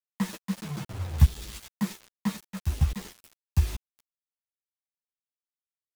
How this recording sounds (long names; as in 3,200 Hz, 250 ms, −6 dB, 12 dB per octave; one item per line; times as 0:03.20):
tremolo saw up 2.4 Hz, depth 95%
a quantiser's noise floor 8 bits, dither none
a shimmering, thickened sound